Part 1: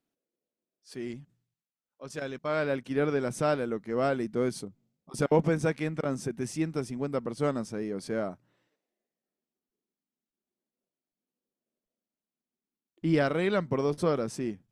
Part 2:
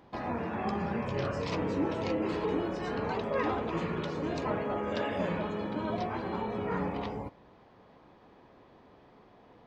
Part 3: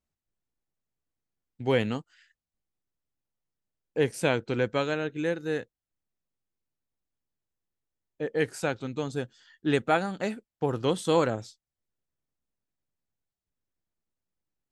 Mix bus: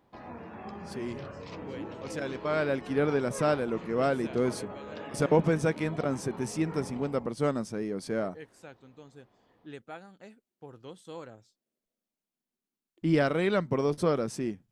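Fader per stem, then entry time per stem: +0.5 dB, -9.5 dB, -19.5 dB; 0.00 s, 0.00 s, 0.00 s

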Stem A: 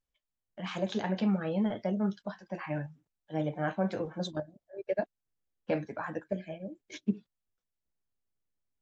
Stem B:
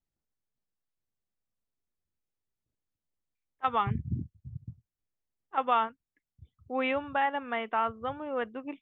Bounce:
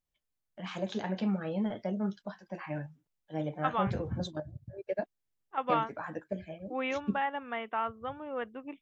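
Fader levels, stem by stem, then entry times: -2.5 dB, -4.0 dB; 0.00 s, 0.00 s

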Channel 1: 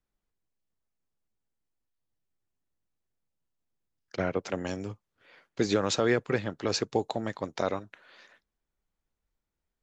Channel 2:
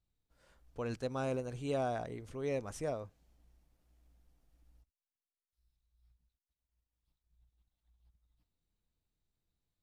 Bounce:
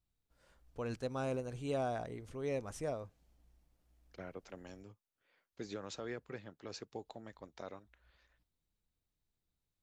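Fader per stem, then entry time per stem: -18.0 dB, -1.5 dB; 0.00 s, 0.00 s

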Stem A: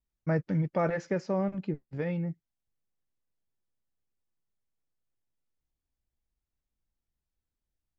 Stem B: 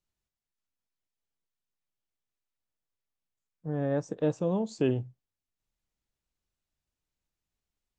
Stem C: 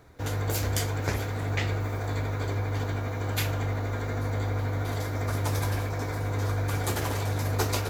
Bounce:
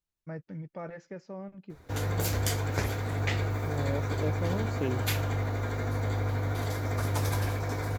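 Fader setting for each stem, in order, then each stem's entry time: -12.0 dB, -5.5 dB, -1.0 dB; 0.00 s, 0.00 s, 1.70 s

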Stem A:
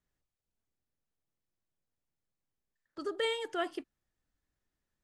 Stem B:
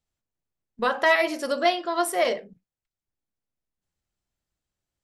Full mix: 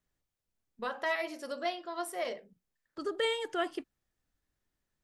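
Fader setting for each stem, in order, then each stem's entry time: +1.5 dB, -12.5 dB; 0.00 s, 0.00 s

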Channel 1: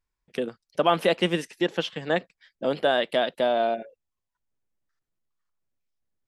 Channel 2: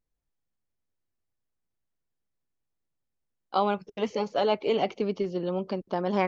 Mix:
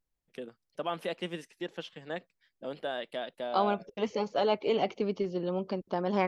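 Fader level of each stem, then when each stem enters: -13.0 dB, -2.5 dB; 0.00 s, 0.00 s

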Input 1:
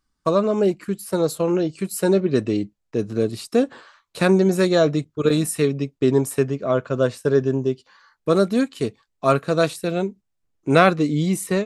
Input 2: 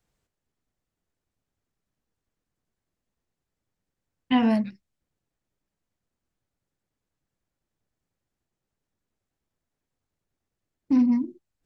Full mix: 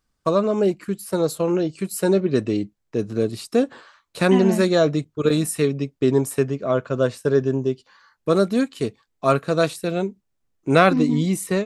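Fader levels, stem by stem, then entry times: -0.5 dB, -2.5 dB; 0.00 s, 0.00 s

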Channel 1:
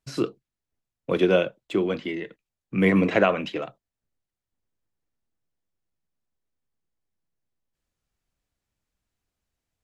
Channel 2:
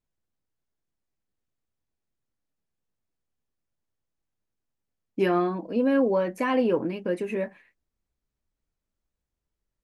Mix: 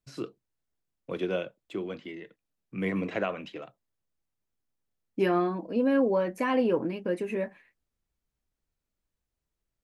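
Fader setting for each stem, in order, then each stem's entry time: -10.5 dB, -2.0 dB; 0.00 s, 0.00 s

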